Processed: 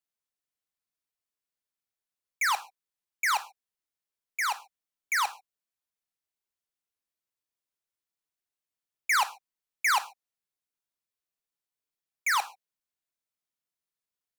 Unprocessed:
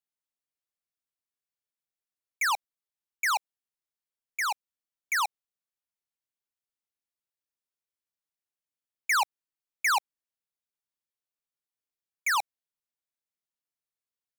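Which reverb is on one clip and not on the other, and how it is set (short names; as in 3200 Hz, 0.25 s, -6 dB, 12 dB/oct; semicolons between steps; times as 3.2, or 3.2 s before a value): non-linear reverb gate 0.16 s falling, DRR 10.5 dB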